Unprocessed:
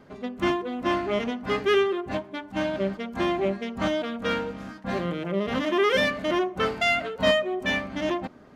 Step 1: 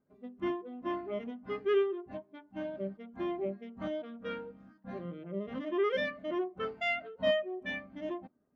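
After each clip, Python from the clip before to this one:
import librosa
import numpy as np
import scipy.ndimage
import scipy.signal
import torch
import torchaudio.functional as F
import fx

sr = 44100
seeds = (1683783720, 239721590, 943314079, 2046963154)

y = fx.spectral_expand(x, sr, expansion=1.5)
y = y * librosa.db_to_amplitude(-9.0)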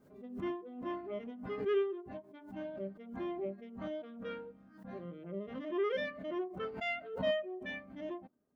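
y = fx.peak_eq(x, sr, hz=470.0, db=2.0, octaves=0.77)
y = fx.pre_swell(y, sr, db_per_s=86.0)
y = y * librosa.db_to_amplitude(-5.0)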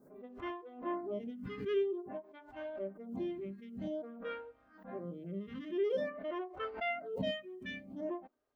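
y = fx.stagger_phaser(x, sr, hz=0.5)
y = y * librosa.db_to_amplitude(3.5)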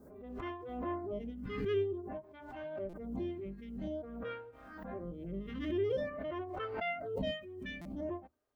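y = fx.octave_divider(x, sr, octaves=2, level_db=-6.0)
y = fx.buffer_glitch(y, sr, at_s=(2.89, 7.81), block=256, repeats=6)
y = fx.pre_swell(y, sr, db_per_s=42.0)
y = y * librosa.db_to_amplitude(-1.0)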